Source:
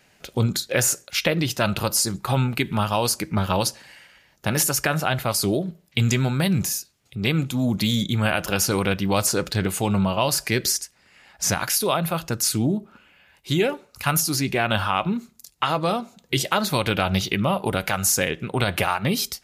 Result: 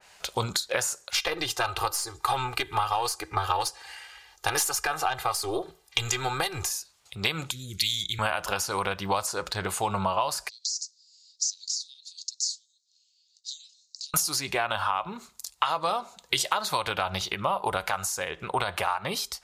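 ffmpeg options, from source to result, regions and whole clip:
-filter_complex "[0:a]asettb=1/sr,asplit=3[a][b][c];[a]atrim=end=1.154[d];[b]atrim=start=1.15:end=6.71,asetpts=PTS-STARTPTS,afade=t=in:d=0.004:c=qsin,afade=t=out:st=5.556:d=0.004:c=qsin,aecho=1:1:2.5:0.87,atrim=end_sample=245196,aeval=exprs='(tanh(2.24*val(0)+0.45)-tanh(0.45))/2.24':c=same,equalizer=f=190:t=o:w=0.28:g=-11.5[e];[c]atrim=start=6.706[f];[d][e]acrossfade=d=0.004:c1=hsin:c2=qsin[g];[g][f]acrossfade=d=0.004:c1=qsin:c2=hsin,asettb=1/sr,asplit=3[h][i][j];[h]atrim=end=7.514[k];[i]atrim=start=7.51:end=8.19,asetpts=PTS-STARTPTS,afade=t=in:d=0.004:c=qsin,afade=t=out:st=0.676:d=0.004:c=qsin,asuperstop=centerf=840:order=8:qfactor=0.55,equalizer=f=230:t=o:w=1.1:g=-13[l];[j]atrim=start=8.186[m];[k][l]acrossfade=d=0.004:c1=hsin:c2=qsin[n];[n][m]acrossfade=d=0.004:c1=qsin:c2=hsin,asettb=1/sr,asplit=3[o][p][q];[o]atrim=end=10.494[r];[p]atrim=start=10.49:end=14.14,asetpts=PTS-STARTPTS,afade=t=in:d=0.004:c=qsin,afade=t=out:st=3.646:d=0.004:c=qsin,acompressor=threshold=-28dB:ratio=4:attack=3.2:release=140:knee=1:detection=peak,asuperpass=centerf=5500:order=8:qfactor=1.7[s];[q]atrim=start=14.136[t];[r][s]acrossfade=d=0.004:c1=hsin:c2=qsin[u];[u][t]acrossfade=d=0.004:c1=qsin:c2=hsin,equalizer=f=125:t=o:w=1:g=-8,equalizer=f=250:t=o:w=1:g=-12,equalizer=f=1k:t=o:w=1:g=9,equalizer=f=4k:t=o:w=1:g=6,equalizer=f=8k:t=o:w=1:g=7,acompressor=threshold=-22dB:ratio=6,adynamicequalizer=threshold=0.00794:dfrequency=2000:dqfactor=0.7:tfrequency=2000:tqfactor=0.7:attack=5:release=100:ratio=0.375:range=3.5:mode=cutabove:tftype=highshelf"

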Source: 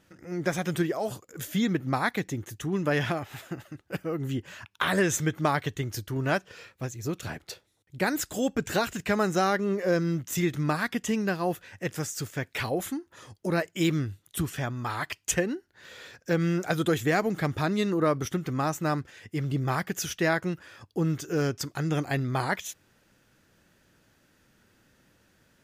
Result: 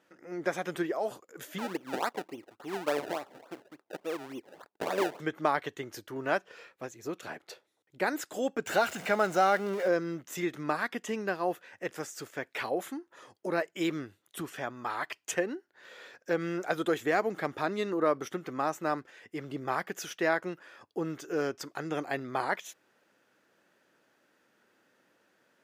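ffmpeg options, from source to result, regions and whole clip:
-filter_complex "[0:a]asettb=1/sr,asplit=3[a][b][c];[a]atrim=end=1.584[d];[b]atrim=start=1.58:end=5.2,asetpts=PTS-STARTPTS,afade=t=in:d=0.004:c=qsin,afade=t=out:st=3.616:d=0.004:c=qsin,bandpass=f=630:t=q:w=0.54,acrusher=samples=28:mix=1:aa=0.000001:lfo=1:lforange=28:lforate=3.5[e];[c]atrim=start=5.196[f];[d][e]acrossfade=d=0.004:c1=hsin:c2=qsin[g];[g][f]acrossfade=d=0.004:c1=qsin:c2=hsin,asettb=1/sr,asplit=3[h][i][j];[h]atrim=end=8.664[k];[i]atrim=start=8.66:end=9.88,asetpts=PTS-STARTPTS,afade=t=in:d=0.004:c=qsin,afade=t=out:st=1.216:d=0.004:c=qsin,aeval=exprs='val(0)+0.5*0.0282*sgn(val(0))':c=same,aecho=1:1:1.4:0.34,atrim=end_sample=53802[l];[j]atrim=start=9.876[m];[k][l]acrossfade=d=0.004:c1=hsin:c2=qsin[n];[n][m]acrossfade=d=0.004:c1=qsin:c2=hsin,highpass=370,highshelf=f=2.8k:g=-10"

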